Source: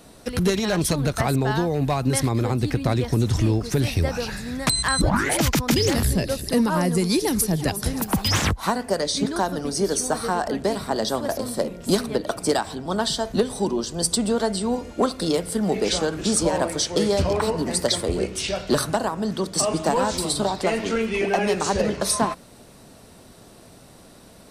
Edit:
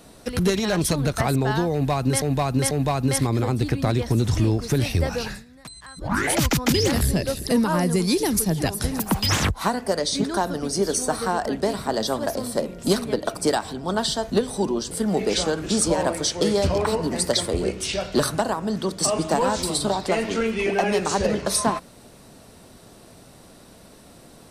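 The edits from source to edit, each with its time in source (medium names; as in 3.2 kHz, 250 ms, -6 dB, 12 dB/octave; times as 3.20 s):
1.73–2.22 s: loop, 3 plays
4.30–5.20 s: dip -20 dB, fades 0.17 s
13.93–15.46 s: delete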